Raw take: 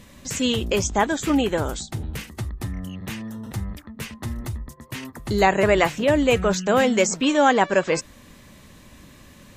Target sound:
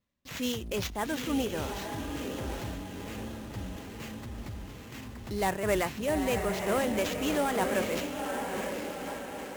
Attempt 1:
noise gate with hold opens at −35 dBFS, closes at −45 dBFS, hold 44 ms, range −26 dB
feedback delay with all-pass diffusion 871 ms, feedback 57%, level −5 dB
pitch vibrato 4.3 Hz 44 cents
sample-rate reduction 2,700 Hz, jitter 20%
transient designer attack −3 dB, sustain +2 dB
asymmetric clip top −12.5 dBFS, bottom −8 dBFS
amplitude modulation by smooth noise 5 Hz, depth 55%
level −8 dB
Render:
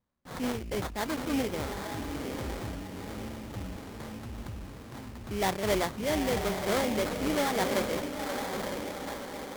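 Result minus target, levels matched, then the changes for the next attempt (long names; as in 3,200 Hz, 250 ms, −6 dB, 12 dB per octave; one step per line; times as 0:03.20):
sample-rate reduction: distortion +8 dB
change: sample-rate reduction 9,700 Hz, jitter 20%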